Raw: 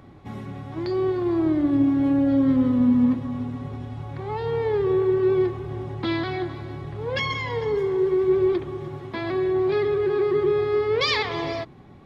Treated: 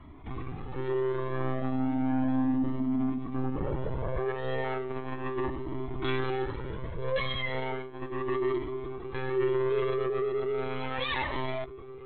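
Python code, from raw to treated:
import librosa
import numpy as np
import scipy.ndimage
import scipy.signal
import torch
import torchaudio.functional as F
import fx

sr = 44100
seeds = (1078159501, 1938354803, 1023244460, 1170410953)

p1 = fx.hum_notches(x, sr, base_hz=50, count=7)
p2 = fx.peak_eq(p1, sr, hz=550.0, db=14.5, octaves=2.8, at=(3.35, 4.31))
p3 = fx.comb(p2, sr, ms=7.5, depth=0.75, at=(9.36, 10.88))
p4 = fx.rider(p3, sr, range_db=5, speed_s=2.0)
p5 = p3 + (p4 * librosa.db_to_amplitude(-2.0))
p6 = 10.0 ** (-15.0 / 20.0) * np.tanh(p5 / 10.0 ** (-15.0 / 20.0))
p7 = p6 + fx.echo_feedback(p6, sr, ms=1147, feedback_pct=54, wet_db=-22, dry=0)
p8 = (np.kron(scipy.signal.resample_poly(p7, 1, 6), np.eye(6)[0]) * 6)[:len(p7)]
p9 = fx.lpc_monotone(p8, sr, seeds[0], pitch_hz=130.0, order=16)
p10 = fx.comb_cascade(p9, sr, direction='rising', hz=0.35)
y = p10 * librosa.db_to_amplitude(-4.5)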